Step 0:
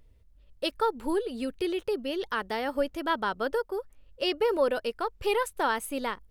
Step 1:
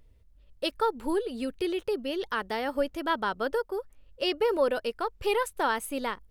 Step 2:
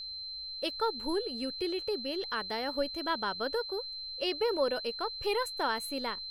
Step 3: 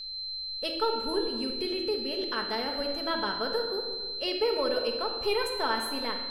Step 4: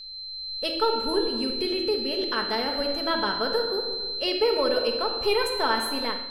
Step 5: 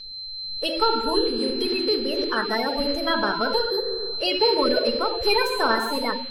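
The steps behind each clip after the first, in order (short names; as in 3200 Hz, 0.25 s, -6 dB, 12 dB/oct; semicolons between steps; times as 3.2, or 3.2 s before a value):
nothing audible
whine 4100 Hz -34 dBFS; gain -4.5 dB
shoebox room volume 1600 m³, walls mixed, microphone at 1.5 m
AGC gain up to 6 dB; gain -1.5 dB
bin magnitudes rounded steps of 30 dB; gain +3.5 dB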